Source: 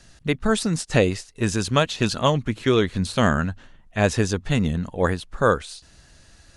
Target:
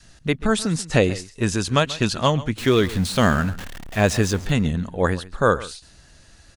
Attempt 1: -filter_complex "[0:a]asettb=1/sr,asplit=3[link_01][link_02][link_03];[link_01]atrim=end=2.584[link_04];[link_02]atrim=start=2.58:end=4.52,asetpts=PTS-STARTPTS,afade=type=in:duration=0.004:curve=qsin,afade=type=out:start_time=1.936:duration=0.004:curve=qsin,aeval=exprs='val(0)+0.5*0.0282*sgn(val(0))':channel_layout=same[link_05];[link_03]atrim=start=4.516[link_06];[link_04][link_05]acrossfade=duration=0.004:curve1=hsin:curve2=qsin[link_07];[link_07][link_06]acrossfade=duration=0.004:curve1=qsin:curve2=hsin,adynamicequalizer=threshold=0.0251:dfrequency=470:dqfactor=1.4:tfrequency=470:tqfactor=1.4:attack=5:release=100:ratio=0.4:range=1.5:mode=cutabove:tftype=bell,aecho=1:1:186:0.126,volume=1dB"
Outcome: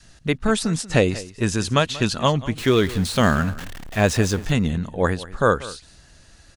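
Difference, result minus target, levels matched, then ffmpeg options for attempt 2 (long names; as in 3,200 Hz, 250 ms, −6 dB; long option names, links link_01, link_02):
echo 51 ms late
-filter_complex "[0:a]asettb=1/sr,asplit=3[link_01][link_02][link_03];[link_01]atrim=end=2.584[link_04];[link_02]atrim=start=2.58:end=4.52,asetpts=PTS-STARTPTS,afade=type=in:duration=0.004:curve=qsin,afade=type=out:start_time=1.936:duration=0.004:curve=qsin,aeval=exprs='val(0)+0.5*0.0282*sgn(val(0))':channel_layout=same[link_05];[link_03]atrim=start=4.516[link_06];[link_04][link_05]acrossfade=duration=0.004:curve1=hsin:curve2=qsin[link_07];[link_07][link_06]acrossfade=duration=0.004:curve1=qsin:curve2=hsin,adynamicequalizer=threshold=0.0251:dfrequency=470:dqfactor=1.4:tfrequency=470:tqfactor=1.4:attack=5:release=100:ratio=0.4:range=1.5:mode=cutabove:tftype=bell,aecho=1:1:135:0.126,volume=1dB"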